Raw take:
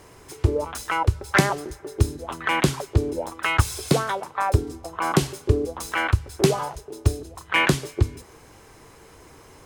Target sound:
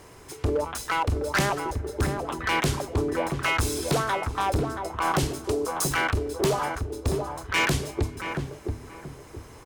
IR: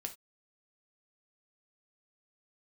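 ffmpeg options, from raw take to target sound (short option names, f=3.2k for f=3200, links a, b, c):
-filter_complex "[0:a]asettb=1/sr,asplit=3[a][b][c];[a]atrim=end=5.444[d];[b]atrim=start=5.44:end=5.97,asetpts=PTS-STARTPTS,afade=t=in:d=0.004:c=qsin,afade=t=out:st=0.526:d=0.004:c=qsin,bass=f=250:g=-12,treble=f=4k:g=9[e];[c]atrim=start=5.966[f];[d][e]acrossfade=d=0.004:c1=hsin:c2=qsin[g];[g][f]acrossfade=d=0.004:c1=qsin:c2=hsin,volume=19.5dB,asoftclip=hard,volume=-19.5dB,asplit=2[h][i];[i]adelay=678,lowpass=f=1k:p=1,volume=-4dB,asplit=2[j][k];[k]adelay=678,lowpass=f=1k:p=1,volume=0.34,asplit=2[l][m];[m]adelay=678,lowpass=f=1k:p=1,volume=0.34,asplit=2[n][o];[o]adelay=678,lowpass=f=1k:p=1,volume=0.34[p];[h][j][l][n][p]amix=inputs=5:normalize=0"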